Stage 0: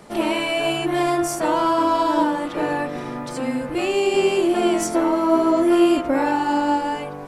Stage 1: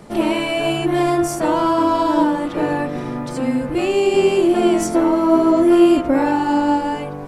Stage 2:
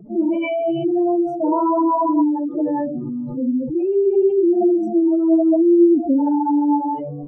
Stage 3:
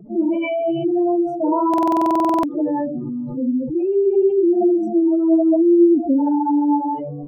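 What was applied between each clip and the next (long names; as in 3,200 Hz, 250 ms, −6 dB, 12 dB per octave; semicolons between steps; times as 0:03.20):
low-shelf EQ 360 Hz +8 dB
expanding power law on the bin magnitudes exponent 3.5
buffer that repeats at 0:01.69, samples 2,048, times 15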